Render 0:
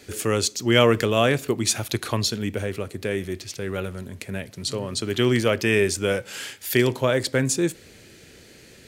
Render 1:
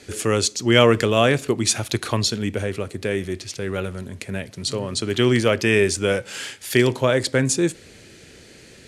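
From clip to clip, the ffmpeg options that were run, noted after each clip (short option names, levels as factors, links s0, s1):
-af "lowpass=f=11000:w=0.5412,lowpass=f=11000:w=1.3066,volume=1.33"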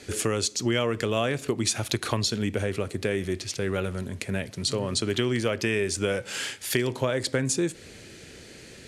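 -af "acompressor=threshold=0.0794:ratio=6"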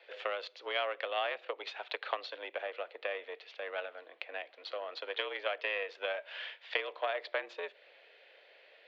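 -af "aeval=exprs='0.355*(cos(1*acos(clip(val(0)/0.355,-1,1)))-cos(1*PI/2))+0.0562*(cos(3*acos(clip(val(0)/0.355,-1,1)))-cos(3*PI/2))+0.00708*(cos(7*acos(clip(val(0)/0.355,-1,1)))-cos(7*PI/2))':c=same,highpass=f=450:t=q:w=0.5412,highpass=f=450:t=q:w=1.307,lowpass=f=3500:t=q:w=0.5176,lowpass=f=3500:t=q:w=0.7071,lowpass=f=3500:t=q:w=1.932,afreqshift=83,volume=0.891"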